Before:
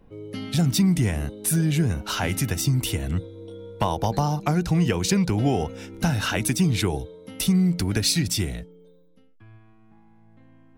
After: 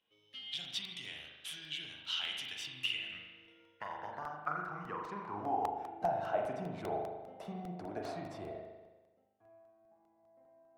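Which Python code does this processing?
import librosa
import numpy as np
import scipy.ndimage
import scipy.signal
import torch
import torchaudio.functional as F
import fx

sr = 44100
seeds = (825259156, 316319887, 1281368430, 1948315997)

p1 = fx.high_shelf(x, sr, hz=2400.0, db=-11.5, at=(3.66, 5.62))
p2 = fx.sample_hold(p1, sr, seeds[0], rate_hz=5700.0, jitter_pct=0)
p3 = p1 + (p2 * 10.0 ** (-12.0 / 20.0))
p4 = fx.filter_sweep_bandpass(p3, sr, from_hz=3200.0, to_hz=670.0, start_s=2.5, end_s=6.19, q=7.3)
p5 = fx.rev_spring(p4, sr, rt60_s=1.2, pass_ms=(39,), chirp_ms=45, drr_db=0.5)
p6 = fx.buffer_crackle(p5, sr, first_s=0.65, period_s=0.2, block=64, kind='repeat')
y = p6 * 10.0 ** (1.0 / 20.0)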